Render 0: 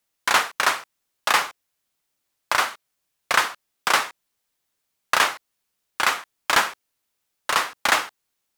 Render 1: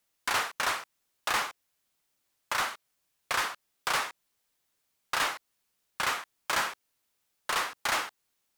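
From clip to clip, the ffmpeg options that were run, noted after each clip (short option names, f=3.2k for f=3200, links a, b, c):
-filter_complex "[0:a]asplit=2[a][b];[b]acompressor=threshold=-27dB:ratio=6,volume=-2dB[c];[a][c]amix=inputs=2:normalize=0,asoftclip=type=tanh:threshold=-17.5dB,volume=-5.5dB"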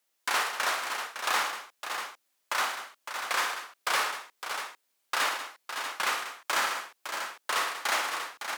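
-filter_complex "[0:a]highpass=290,asplit=2[a][b];[b]aecho=0:1:56|109|190|559|640:0.422|0.266|0.266|0.376|0.376[c];[a][c]amix=inputs=2:normalize=0"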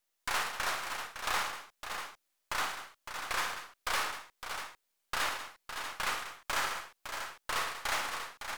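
-af "aeval=exprs='if(lt(val(0),0),0.447*val(0),val(0))':c=same,volume=-2.5dB"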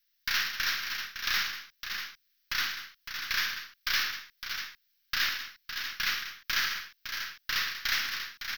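-af "firequalizer=gain_entry='entry(230,0);entry(390,-11);entry(760,-18);entry(1600,6);entry(2400,5);entry(5500,11);entry(8500,-27);entry(13000,10)':delay=0.05:min_phase=1"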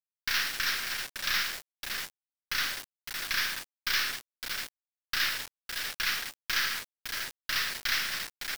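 -af "acrusher=bits=5:mix=0:aa=0.000001"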